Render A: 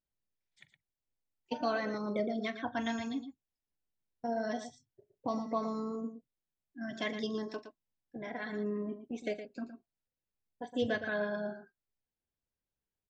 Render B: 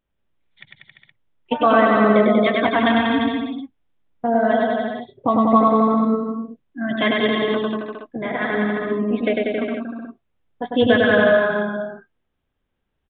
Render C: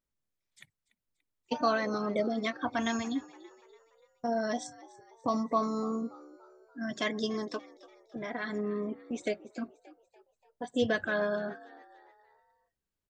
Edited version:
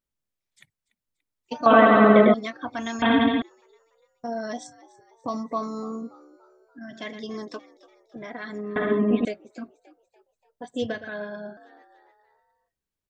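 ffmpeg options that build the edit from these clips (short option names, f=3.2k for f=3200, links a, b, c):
-filter_complex "[1:a]asplit=3[a][b][c];[0:a]asplit=2[d][e];[2:a]asplit=6[f][g][h][i][j][k];[f]atrim=end=1.662[l];[a]atrim=start=1.658:end=2.342[m];[g]atrim=start=2.338:end=3.022[n];[b]atrim=start=3.018:end=3.422[o];[h]atrim=start=3.418:end=6.792[p];[d]atrim=start=6.788:end=7.292[q];[i]atrim=start=7.288:end=8.762[r];[c]atrim=start=8.758:end=9.252[s];[j]atrim=start=9.248:end=10.922[t];[e]atrim=start=10.918:end=11.572[u];[k]atrim=start=11.568[v];[l][m]acrossfade=d=0.004:c1=hsin:c2=hsin[w];[w][n]acrossfade=d=0.004:c1=hsin:c2=hsin[x];[x][o]acrossfade=d=0.004:c1=hsin:c2=hsin[y];[y][p]acrossfade=d=0.004:c1=hsin:c2=hsin[z];[z][q]acrossfade=d=0.004:c1=hsin:c2=hsin[aa];[aa][r]acrossfade=d=0.004:c1=hsin:c2=hsin[ab];[ab][s]acrossfade=d=0.004:c1=hsin:c2=hsin[ac];[ac][t]acrossfade=d=0.004:c1=hsin:c2=hsin[ad];[ad][u]acrossfade=d=0.004:c1=hsin:c2=hsin[ae];[ae][v]acrossfade=d=0.004:c1=hsin:c2=hsin"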